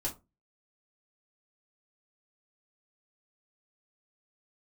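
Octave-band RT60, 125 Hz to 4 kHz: 0.40, 0.30, 0.25, 0.25, 0.15, 0.15 s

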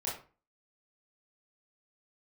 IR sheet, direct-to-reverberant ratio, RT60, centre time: -7.0 dB, 0.35 s, 37 ms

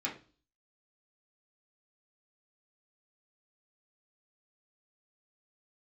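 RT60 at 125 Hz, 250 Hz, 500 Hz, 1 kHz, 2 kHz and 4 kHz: 0.50, 0.50, 0.40, 0.35, 0.35, 0.40 s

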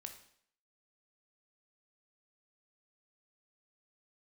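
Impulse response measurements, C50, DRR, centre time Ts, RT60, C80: 9.0 dB, 5.0 dB, 15 ms, 0.60 s, 12.5 dB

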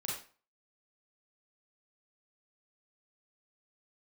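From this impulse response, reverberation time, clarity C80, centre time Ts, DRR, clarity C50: 0.40 s, 7.5 dB, 46 ms, -4.5 dB, 1.5 dB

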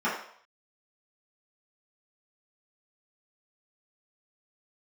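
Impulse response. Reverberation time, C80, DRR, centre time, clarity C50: 0.60 s, 8.0 dB, -10.5 dB, 39 ms, 4.0 dB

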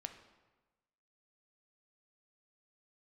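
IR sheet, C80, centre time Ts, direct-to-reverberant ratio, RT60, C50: 11.5 dB, 16 ms, 6.5 dB, 1.2 s, 9.5 dB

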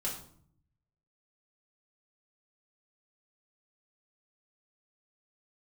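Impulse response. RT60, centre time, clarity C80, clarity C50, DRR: 0.60 s, 30 ms, 10.0 dB, 6.0 dB, -4.5 dB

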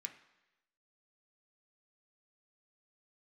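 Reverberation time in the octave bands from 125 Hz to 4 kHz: 0.90, 0.90, 1.0, 1.0, 1.0, 1.0 s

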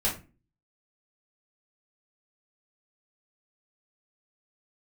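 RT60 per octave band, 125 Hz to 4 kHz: 0.55, 0.50, 0.35, 0.30, 0.30, 0.20 s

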